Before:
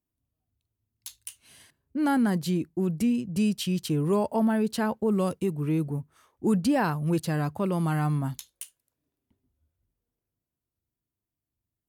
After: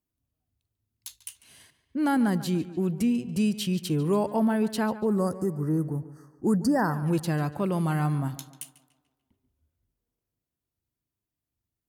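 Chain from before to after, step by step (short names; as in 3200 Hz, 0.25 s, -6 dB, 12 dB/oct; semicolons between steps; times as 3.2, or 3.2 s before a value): spectral gain 4.89–7.03, 2000–4400 Hz -27 dB; tape echo 0.144 s, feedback 50%, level -14 dB, low-pass 4600 Hz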